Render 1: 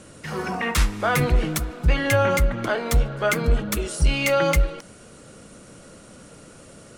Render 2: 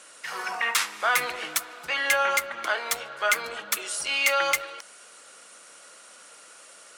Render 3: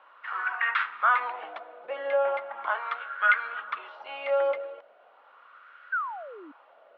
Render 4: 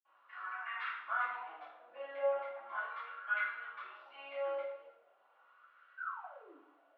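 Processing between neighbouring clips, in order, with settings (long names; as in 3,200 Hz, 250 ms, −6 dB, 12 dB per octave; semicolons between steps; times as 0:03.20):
high-pass filter 1,000 Hz 12 dB per octave; level +2 dB
elliptic band-pass filter 200–3,400 Hz, stop band 40 dB; sound drawn into the spectrogram fall, 0:05.92–0:06.52, 270–1,600 Hz −32 dBFS; LFO wah 0.38 Hz 550–1,500 Hz, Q 3.5; level +6.5 dB
flanger 0.68 Hz, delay 6.1 ms, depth 4.9 ms, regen +48%; convolution reverb RT60 0.70 s, pre-delay 47 ms; level +8.5 dB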